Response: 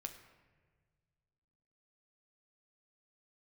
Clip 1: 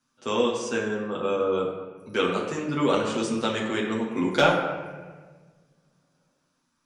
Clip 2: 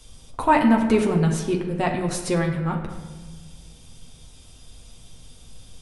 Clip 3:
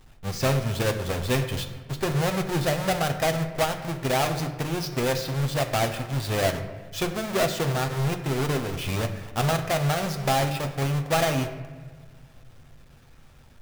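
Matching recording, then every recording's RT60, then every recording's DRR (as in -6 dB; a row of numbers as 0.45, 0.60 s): 3; 1.5, 1.5, 1.5 s; -5.0, 0.5, 4.5 dB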